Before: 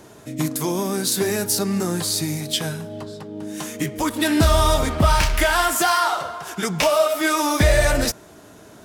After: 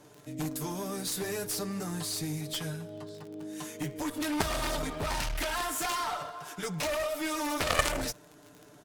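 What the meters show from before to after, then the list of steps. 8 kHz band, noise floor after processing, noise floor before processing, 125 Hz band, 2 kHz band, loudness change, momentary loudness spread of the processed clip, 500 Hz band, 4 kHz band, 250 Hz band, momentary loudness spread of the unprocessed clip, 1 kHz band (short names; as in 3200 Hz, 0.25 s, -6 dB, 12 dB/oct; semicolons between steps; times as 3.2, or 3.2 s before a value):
-11.0 dB, -55 dBFS, -46 dBFS, -14.5 dB, -11.5 dB, -12.5 dB, 10 LU, -13.5 dB, -11.0 dB, -12.0 dB, 14 LU, -12.5 dB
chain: comb 6.8 ms, depth 74%; crackle 40/s -27 dBFS; added harmonics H 3 -6 dB, 8 -34 dB, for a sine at -2 dBFS; gain -6 dB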